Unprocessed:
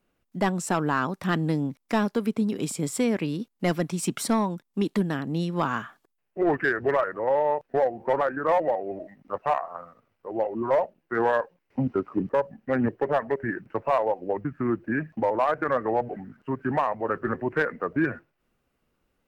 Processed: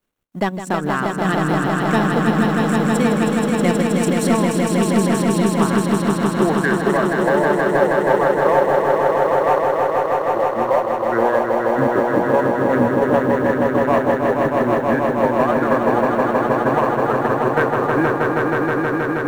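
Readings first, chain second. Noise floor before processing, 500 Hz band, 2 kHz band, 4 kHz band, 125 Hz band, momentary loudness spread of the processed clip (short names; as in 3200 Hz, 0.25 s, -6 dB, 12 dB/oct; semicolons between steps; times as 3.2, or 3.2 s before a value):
-76 dBFS, +10.0 dB, +9.5 dB, +9.0 dB, +9.5 dB, 3 LU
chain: G.711 law mismatch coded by A; notch 4900 Hz, Q 10; transient shaper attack +2 dB, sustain -11 dB; on a send: swelling echo 0.159 s, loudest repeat 5, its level -4 dB; on the sum: gain +3.5 dB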